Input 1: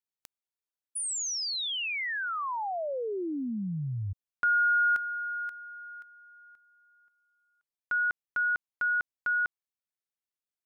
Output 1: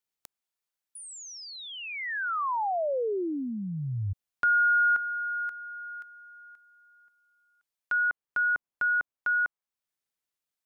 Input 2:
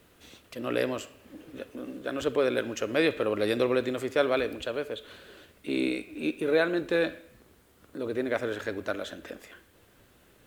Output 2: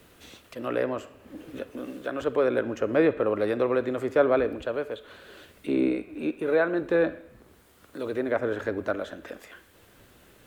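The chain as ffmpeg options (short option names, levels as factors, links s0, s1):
-filter_complex "[0:a]acrossover=split=580|1700[s0][s1][s2];[s0]tremolo=f=0.69:d=0.47[s3];[s2]acompressor=threshold=0.00398:ratio=6:attack=2.1:release=886:detection=peak[s4];[s3][s1][s4]amix=inputs=3:normalize=0,volume=1.68"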